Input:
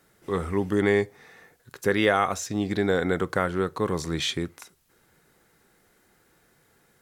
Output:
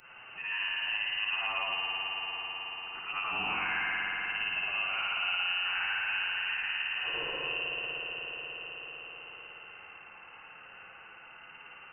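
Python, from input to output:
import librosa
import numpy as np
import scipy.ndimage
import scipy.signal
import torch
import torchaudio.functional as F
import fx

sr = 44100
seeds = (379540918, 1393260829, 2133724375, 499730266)

y = fx.frame_reverse(x, sr, frame_ms=132.0)
y = scipy.signal.sosfilt(scipy.signal.butter(2, 67.0, 'highpass', fs=sr, output='sos'), y)
y = fx.peak_eq(y, sr, hz=480.0, db=-13.5, octaves=0.71)
y = fx.hum_notches(y, sr, base_hz=60, count=3)
y = fx.rider(y, sr, range_db=3, speed_s=2.0)
y = np.clip(10.0 ** (18.5 / 20.0) * y, -1.0, 1.0) / 10.0 ** (18.5 / 20.0)
y = fx.stretch_vocoder(y, sr, factor=1.7)
y = fx.rev_spring(y, sr, rt60_s=3.6, pass_ms=(55,), chirp_ms=80, drr_db=-4.0)
y = fx.freq_invert(y, sr, carrier_hz=2900)
y = fx.band_squash(y, sr, depth_pct=70)
y = y * librosa.db_to_amplitude(-6.0)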